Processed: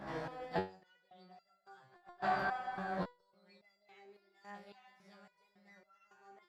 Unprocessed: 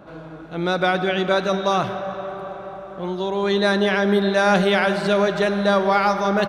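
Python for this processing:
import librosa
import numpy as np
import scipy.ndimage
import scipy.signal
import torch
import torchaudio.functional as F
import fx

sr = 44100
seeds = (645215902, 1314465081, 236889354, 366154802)

y = fx.gate_flip(x, sr, shuts_db=-18.0, range_db=-36)
y = fx.formant_shift(y, sr, semitones=4)
y = fx.resonator_held(y, sr, hz=3.6, low_hz=68.0, high_hz=680.0)
y = y * 10.0 ** (5.5 / 20.0)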